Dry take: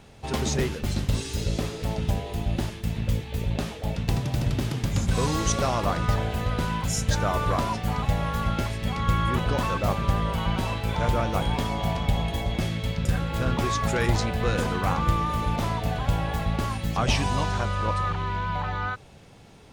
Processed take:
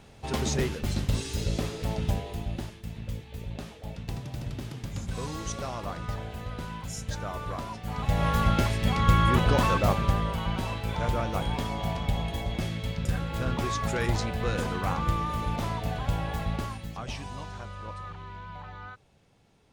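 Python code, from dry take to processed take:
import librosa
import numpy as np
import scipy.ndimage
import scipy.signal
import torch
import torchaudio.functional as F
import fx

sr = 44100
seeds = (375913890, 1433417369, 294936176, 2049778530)

y = fx.gain(x, sr, db=fx.line((2.12, -2.0), (2.8, -10.0), (7.81, -10.0), (8.26, 2.5), (9.72, 2.5), (10.4, -4.0), (16.54, -4.0), (17.04, -13.5)))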